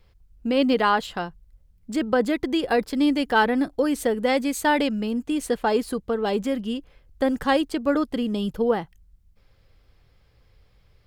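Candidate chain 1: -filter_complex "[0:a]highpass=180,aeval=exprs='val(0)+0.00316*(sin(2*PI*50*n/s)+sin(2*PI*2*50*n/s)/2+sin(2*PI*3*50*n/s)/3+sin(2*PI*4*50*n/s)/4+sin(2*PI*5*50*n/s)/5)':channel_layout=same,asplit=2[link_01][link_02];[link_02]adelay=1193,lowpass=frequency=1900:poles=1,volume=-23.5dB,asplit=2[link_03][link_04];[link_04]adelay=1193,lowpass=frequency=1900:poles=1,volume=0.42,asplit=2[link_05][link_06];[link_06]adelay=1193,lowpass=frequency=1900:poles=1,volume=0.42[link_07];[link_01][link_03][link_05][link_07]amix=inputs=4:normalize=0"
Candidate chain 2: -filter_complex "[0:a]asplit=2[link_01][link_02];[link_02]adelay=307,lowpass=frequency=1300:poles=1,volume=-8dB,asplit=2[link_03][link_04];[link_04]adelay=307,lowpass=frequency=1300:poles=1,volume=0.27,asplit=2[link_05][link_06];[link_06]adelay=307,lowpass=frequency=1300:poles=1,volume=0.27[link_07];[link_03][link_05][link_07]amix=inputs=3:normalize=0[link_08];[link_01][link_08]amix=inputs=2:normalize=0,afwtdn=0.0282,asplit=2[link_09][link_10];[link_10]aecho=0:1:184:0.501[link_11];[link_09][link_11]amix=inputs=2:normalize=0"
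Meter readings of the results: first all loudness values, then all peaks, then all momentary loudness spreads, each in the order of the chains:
−24.0, −22.5 LKFS; −7.5, −6.5 dBFS; 8, 10 LU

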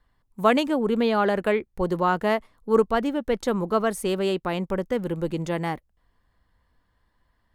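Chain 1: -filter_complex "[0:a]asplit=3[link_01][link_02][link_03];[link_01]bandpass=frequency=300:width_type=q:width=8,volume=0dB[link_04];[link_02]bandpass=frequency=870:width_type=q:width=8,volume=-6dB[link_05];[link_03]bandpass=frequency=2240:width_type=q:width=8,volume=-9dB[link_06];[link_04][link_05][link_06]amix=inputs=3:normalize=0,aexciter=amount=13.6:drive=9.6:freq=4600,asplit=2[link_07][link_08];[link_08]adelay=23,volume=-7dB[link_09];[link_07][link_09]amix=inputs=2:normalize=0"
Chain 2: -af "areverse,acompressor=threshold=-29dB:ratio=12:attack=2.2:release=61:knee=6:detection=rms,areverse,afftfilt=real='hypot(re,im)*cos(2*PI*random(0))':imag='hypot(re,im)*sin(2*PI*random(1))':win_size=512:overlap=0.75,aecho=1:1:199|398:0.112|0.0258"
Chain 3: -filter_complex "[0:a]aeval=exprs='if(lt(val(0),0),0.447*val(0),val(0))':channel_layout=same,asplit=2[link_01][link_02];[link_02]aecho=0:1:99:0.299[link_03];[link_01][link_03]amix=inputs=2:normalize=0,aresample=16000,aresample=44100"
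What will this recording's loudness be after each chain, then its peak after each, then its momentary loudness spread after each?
−35.0, −41.5, −27.0 LKFS; −16.5, −26.5, −6.5 dBFS; 12, 4, 7 LU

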